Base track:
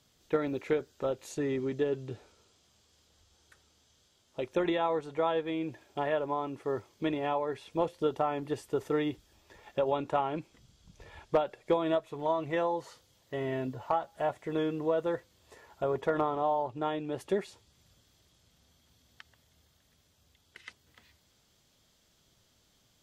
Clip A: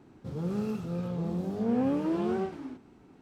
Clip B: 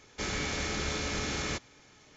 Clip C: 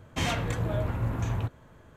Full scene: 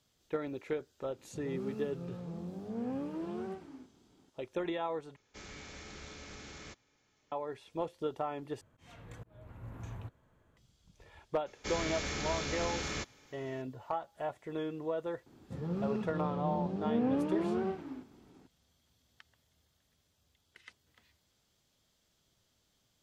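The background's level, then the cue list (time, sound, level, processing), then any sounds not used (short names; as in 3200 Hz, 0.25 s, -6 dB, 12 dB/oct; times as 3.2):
base track -6.5 dB
1.09 add A -10 dB
5.16 replace with B -15.5 dB + Doppler distortion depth 0.14 ms
8.61 replace with C -14.5 dB + auto swell 0.599 s
11.46 add B -4 dB
15.26 add A -3.5 dB + LPF 4700 Hz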